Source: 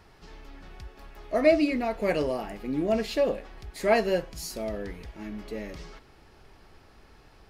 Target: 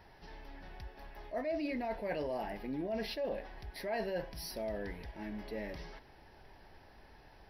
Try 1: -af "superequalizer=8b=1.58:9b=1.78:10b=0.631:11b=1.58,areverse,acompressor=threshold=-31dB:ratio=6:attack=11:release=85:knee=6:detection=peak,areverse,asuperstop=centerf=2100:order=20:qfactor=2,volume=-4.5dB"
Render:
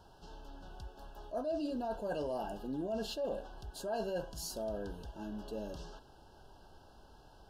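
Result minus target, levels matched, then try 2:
2,000 Hz band −7.0 dB
-af "superequalizer=8b=1.58:9b=1.78:10b=0.631:11b=1.58,areverse,acompressor=threshold=-31dB:ratio=6:attack=11:release=85:knee=6:detection=peak,areverse,asuperstop=centerf=7700:order=20:qfactor=2,volume=-4.5dB"

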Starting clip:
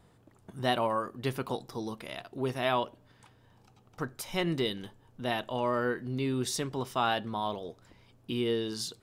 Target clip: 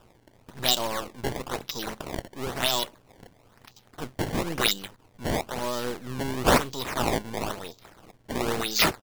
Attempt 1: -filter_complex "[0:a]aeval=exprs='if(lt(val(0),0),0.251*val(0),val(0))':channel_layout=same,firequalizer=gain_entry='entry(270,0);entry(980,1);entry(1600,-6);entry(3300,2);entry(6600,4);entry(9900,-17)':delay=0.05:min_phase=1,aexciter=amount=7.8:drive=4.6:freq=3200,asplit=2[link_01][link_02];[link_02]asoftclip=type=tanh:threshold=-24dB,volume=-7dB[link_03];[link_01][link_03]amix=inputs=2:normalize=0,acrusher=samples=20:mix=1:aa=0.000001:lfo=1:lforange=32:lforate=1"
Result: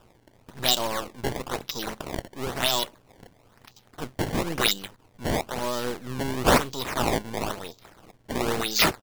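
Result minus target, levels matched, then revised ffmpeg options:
soft clipping: distortion −6 dB
-filter_complex "[0:a]aeval=exprs='if(lt(val(0),0),0.251*val(0),val(0))':channel_layout=same,firequalizer=gain_entry='entry(270,0);entry(980,1);entry(1600,-6);entry(3300,2);entry(6600,4);entry(9900,-17)':delay=0.05:min_phase=1,aexciter=amount=7.8:drive=4.6:freq=3200,asplit=2[link_01][link_02];[link_02]asoftclip=type=tanh:threshold=-35dB,volume=-7dB[link_03];[link_01][link_03]amix=inputs=2:normalize=0,acrusher=samples=20:mix=1:aa=0.000001:lfo=1:lforange=32:lforate=1"

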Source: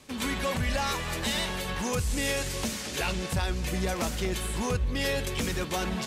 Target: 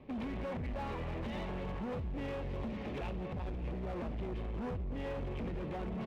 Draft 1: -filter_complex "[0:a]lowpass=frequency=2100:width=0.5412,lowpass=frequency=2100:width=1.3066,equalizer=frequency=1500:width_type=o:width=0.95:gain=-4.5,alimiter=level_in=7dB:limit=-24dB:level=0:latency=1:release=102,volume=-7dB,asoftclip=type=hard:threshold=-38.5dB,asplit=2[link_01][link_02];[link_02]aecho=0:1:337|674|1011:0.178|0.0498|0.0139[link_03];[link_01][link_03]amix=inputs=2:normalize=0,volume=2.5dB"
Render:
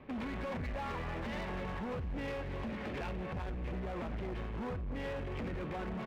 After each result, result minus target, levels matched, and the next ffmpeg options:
echo 233 ms early; 2,000 Hz band +4.5 dB
-filter_complex "[0:a]lowpass=frequency=2100:width=0.5412,lowpass=frequency=2100:width=1.3066,equalizer=frequency=1500:width_type=o:width=0.95:gain=-4.5,alimiter=level_in=7dB:limit=-24dB:level=0:latency=1:release=102,volume=-7dB,asoftclip=type=hard:threshold=-38.5dB,asplit=2[link_01][link_02];[link_02]aecho=0:1:570|1140|1710:0.178|0.0498|0.0139[link_03];[link_01][link_03]amix=inputs=2:normalize=0,volume=2.5dB"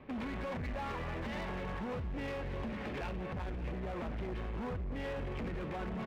2,000 Hz band +4.5 dB
-filter_complex "[0:a]lowpass=frequency=2100:width=0.5412,lowpass=frequency=2100:width=1.3066,equalizer=frequency=1500:width_type=o:width=0.95:gain=-16,alimiter=level_in=7dB:limit=-24dB:level=0:latency=1:release=102,volume=-7dB,asoftclip=type=hard:threshold=-38.5dB,asplit=2[link_01][link_02];[link_02]aecho=0:1:570|1140|1710:0.178|0.0498|0.0139[link_03];[link_01][link_03]amix=inputs=2:normalize=0,volume=2.5dB"

